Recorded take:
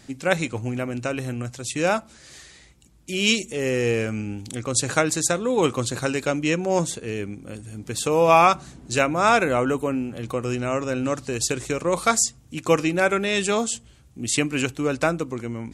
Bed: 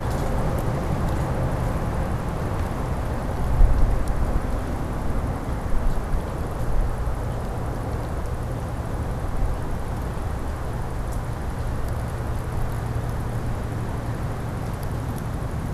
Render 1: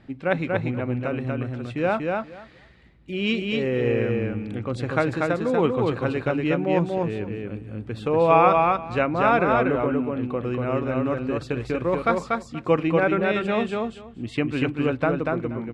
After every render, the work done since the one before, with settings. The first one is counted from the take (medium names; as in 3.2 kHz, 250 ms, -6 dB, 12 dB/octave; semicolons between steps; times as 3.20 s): distance through air 440 m; feedback delay 239 ms, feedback 15%, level -3 dB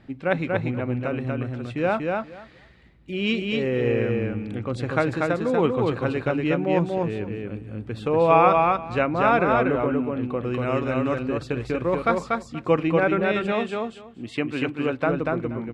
10.54–11.23 s: treble shelf 2.4 kHz +9 dB; 13.52–15.07 s: high-pass 230 Hz 6 dB/octave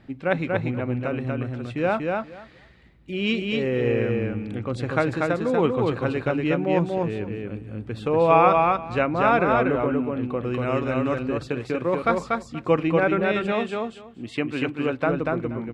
11.48–12.04 s: high-pass 130 Hz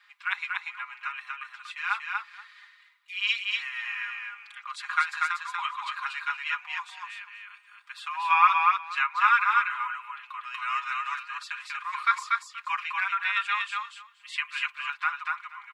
steep high-pass 980 Hz 72 dB/octave; comb 4.9 ms, depth 90%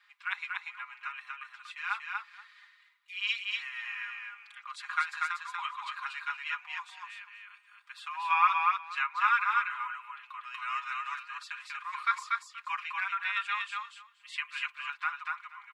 trim -5 dB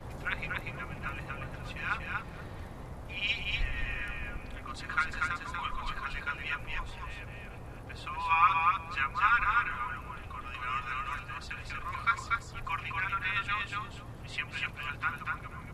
add bed -18 dB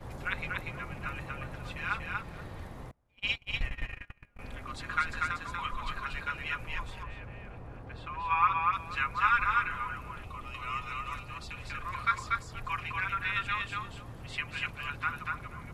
2.91–4.39 s: gate -34 dBFS, range -31 dB; 7.03–8.73 s: low-pass 1.9 kHz 6 dB/octave; 10.24–11.63 s: peaking EQ 1.6 kHz -14.5 dB 0.24 oct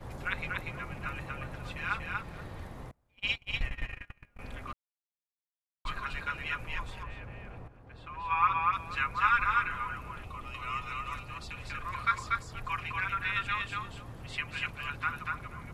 4.73–5.85 s: mute; 7.68–8.51 s: fade in, from -12 dB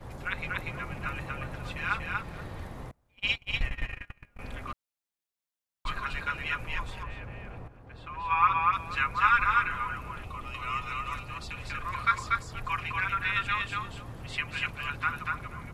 level rider gain up to 3 dB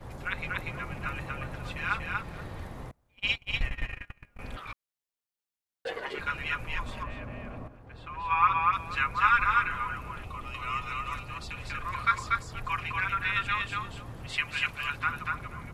4.56–6.18 s: ring modulator 1.3 kHz -> 400 Hz; 6.85–7.76 s: small resonant body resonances 250/610/1100 Hz, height 10 dB; 14.29–14.99 s: tilt shelf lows -3.5 dB, about 850 Hz